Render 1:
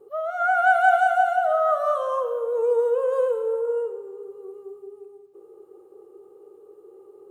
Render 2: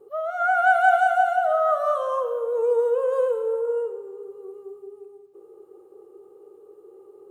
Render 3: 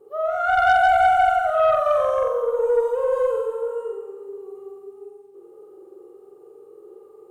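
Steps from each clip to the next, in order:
no processing that can be heard
flutter between parallel walls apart 7.8 metres, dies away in 1 s; harmonic generator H 4 −28 dB, 5 −21 dB, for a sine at −3.5 dBFS; level −3.5 dB

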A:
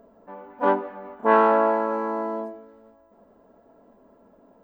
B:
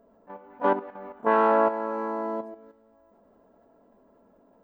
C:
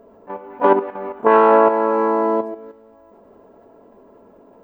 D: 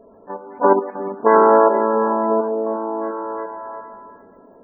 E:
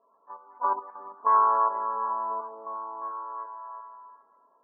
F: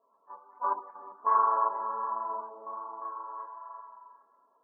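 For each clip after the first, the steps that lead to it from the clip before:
output level in coarse steps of 10 dB
graphic EQ with 15 bands 100 Hz +6 dB, 400 Hz +8 dB, 1,000 Hz +4 dB, 2,500 Hz +5 dB; brickwall limiter −10.5 dBFS, peak gain reduction 5.5 dB; level +8 dB
gate on every frequency bin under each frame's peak −25 dB strong; echo through a band-pass that steps 350 ms, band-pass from 180 Hz, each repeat 0.7 octaves, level −4 dB
resonant band-pass 1,100 Hz, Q 9
flanger 1.3 Hz, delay 6 ms, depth 8.7 ms, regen −37%

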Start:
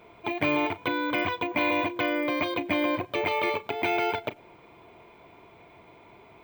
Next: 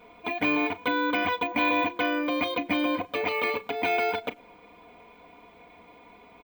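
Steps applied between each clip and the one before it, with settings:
comb filter 4.1 ms, depth 90%
level −2 dB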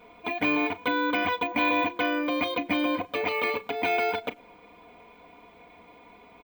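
no processing that can be heard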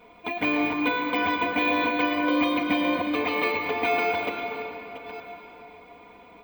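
delay that plays each chunk backwards 578 ms, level −11.5 dB
on a send at −2.5 dB: convolution reverb RT60 3.5 s, pre-delay 100 ms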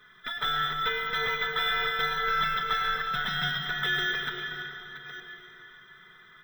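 neighbouring bands swapped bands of 1,000 Hz
level −4 dB

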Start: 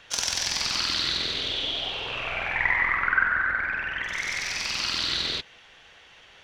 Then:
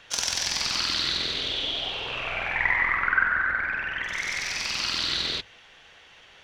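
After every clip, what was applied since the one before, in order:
mains-hum notches 50/100 Hz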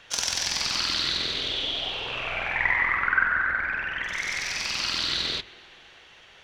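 convolution reverb RT60 3.2 s, pre-delay 86 ms, DRR 17.5 dB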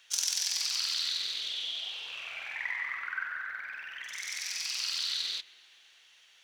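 high-pass filter 64 Hz
first-order pre-emphasis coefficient 0.97

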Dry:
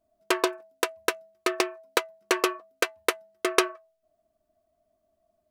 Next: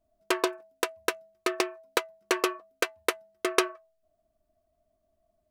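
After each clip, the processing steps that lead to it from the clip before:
low-shelf EQ 94 Hz +11.5 dB
level −2.5 dB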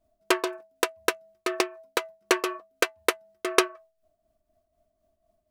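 shaped tremolo triangle 4 Hz, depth 60%
level +4.5 dB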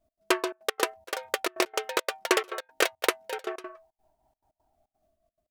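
delay with pitch and tempo change per echo 429 ms, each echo +3 semitones, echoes 2
gate pattern "x.xxxx.x.xx" 173 BPM −24 dB
level −1.5 dB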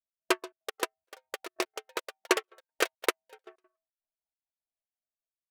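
expander for the loud parts 2.5 to 1, over −43 dBFS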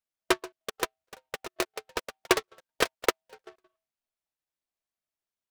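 short delay modulated by noise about 1,800 Hz, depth 0.052 ms
level +2 dB

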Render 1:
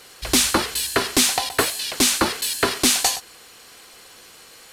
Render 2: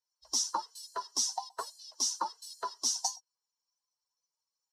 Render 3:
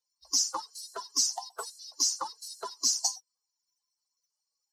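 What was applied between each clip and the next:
spectral dynamics exaggerated over time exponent 2; pair of resonant band-passes 2,300 Hz, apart 2.6 octaves
spectral magnitudes quantised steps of 30 dB; high-shelf EQ 4,200 Hz +7.5 dB; notch filter 950 Hz, Q 12

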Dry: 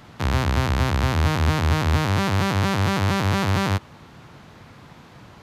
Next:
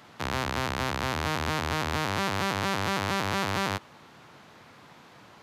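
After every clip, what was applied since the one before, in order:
high-pass filter 360 Hz 6 dB per octave
level −3 dB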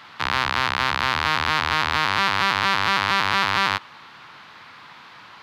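flat-topped bell 2,100 Hz +12 dB 2.8 octaves
level −1.5 dB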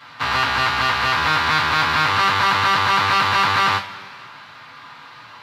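coupled-rooms reverb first 0.24 s, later 2 s, from −21 dB, DRR −7.5 dB
level −5 dB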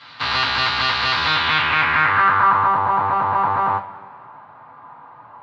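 low-pass filter sweep 4,300 Hz → 880 Hz, 0:01.24–0:02.81
level −2.5 dB

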